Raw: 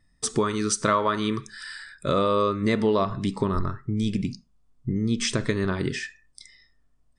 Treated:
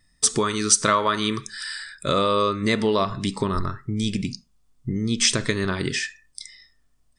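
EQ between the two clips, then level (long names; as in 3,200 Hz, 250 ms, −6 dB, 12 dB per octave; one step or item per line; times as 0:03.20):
high-shelf EQ 2,000 Hz +10 dB
0.0 dB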